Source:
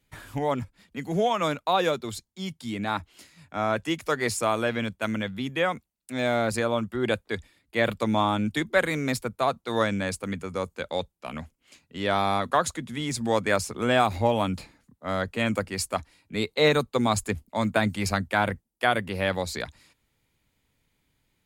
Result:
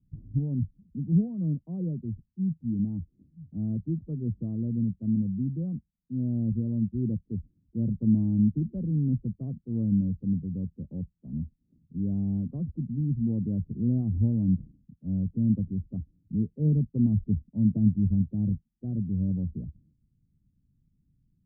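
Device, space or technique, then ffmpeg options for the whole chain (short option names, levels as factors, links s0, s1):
the neighbour's flat through the wall: -filter_complex "[0:a]lowpass=f=230:w=0.5412,lowpass=f=230:w=1.3066,equalizer=f=160:t=o:w=0.77:g=4,asettb=1/sr,asplit=3[s0][s1][s2];[s0]atrim=end=18.004[s3];[s1]atrim=start=18:end=19.29,asetpts=PTS-STARTPTS,afade=t=in:d=0.004:c=qsin,afade=t=out:st=1.286:d=0.004:c=qsin,equalizer=f=1100:t=o:w=1.7:g=-3[s4];[s2]atrim=start=19.286[s5];[s3][s4]acrossfade=d=0.004:c1=hsin:c2=qsin[s6];[s6][s5]acrossfade=d=0.004:c1=qsin:c2=hsin,volume=1.78"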